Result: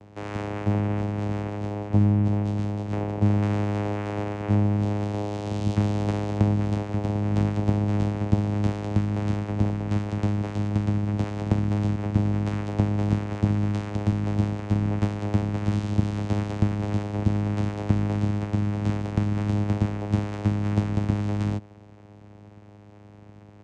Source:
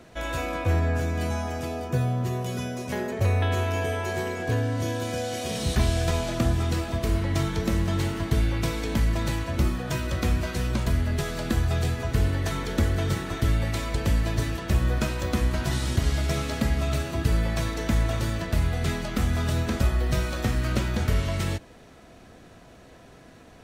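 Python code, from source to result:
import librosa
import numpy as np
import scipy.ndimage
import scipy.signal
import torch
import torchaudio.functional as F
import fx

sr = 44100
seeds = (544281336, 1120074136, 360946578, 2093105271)

y = fx.vocoder(x, sr, bands=4, carrier='saw', carrier_hz=103.0)
y = F.gain(torch.from_numpy(y), 4.5).numpy()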